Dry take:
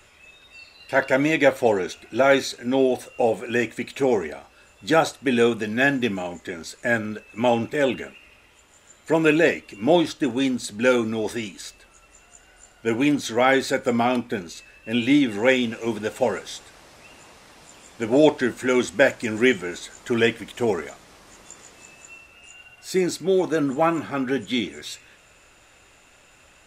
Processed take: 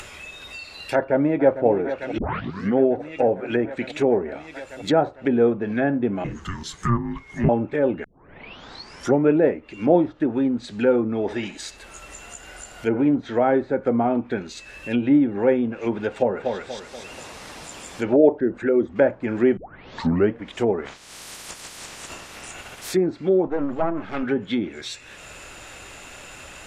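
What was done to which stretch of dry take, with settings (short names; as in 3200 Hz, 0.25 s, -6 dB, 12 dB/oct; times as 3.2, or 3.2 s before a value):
0.94–1.66 echo throw 0.45 s, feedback 80%, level -12.5 dB
2.18 tape start 0.60 s
6.24–7.49 frequency shift -470 Hz
8.04 tape start 1.27 s
11.21–13.07 narrowing echo 65 ms, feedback 65%, level -9 dB
16.09–16.55 echo throw 0.24 s, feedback 35%, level -5.5 dB
18.16–18.96 formant sharpening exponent 1.5
19.57 tape start 0.76 s
20.84–22.93 spectral limiter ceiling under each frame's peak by 22 dB
23.47–24.23 half-wave gain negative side -12 dB
whole clip: treble ducked by the level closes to 850 Hz, closed at -18.5 dBFS; upward compressor, threshold -31 dBFS; gain +1.5 dB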